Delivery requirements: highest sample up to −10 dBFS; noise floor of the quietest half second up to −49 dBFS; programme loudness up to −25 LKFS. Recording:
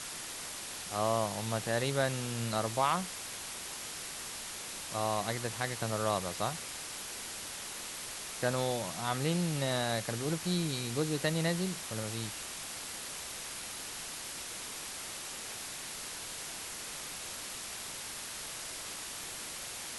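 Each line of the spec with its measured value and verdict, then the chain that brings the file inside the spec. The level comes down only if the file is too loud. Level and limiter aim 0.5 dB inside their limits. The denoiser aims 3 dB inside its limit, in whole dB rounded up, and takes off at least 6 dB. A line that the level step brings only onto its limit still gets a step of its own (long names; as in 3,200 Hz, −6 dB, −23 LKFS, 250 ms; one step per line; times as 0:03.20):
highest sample −16.0 dBFS: in spec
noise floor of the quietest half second −42 dBFS: out of spec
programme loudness −35.5 LKFS: in spec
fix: broadband denoise 10 dB, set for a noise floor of −42 dBFS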